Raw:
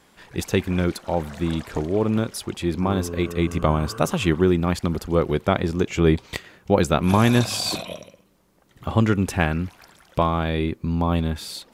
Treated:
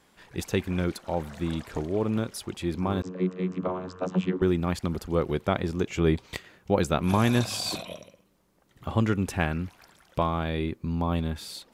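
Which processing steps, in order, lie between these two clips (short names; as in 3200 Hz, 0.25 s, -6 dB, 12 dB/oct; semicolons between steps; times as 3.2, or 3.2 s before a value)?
3.02–4.42 vocoder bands 32, saw 91.8 Hz; gain -5.5 dB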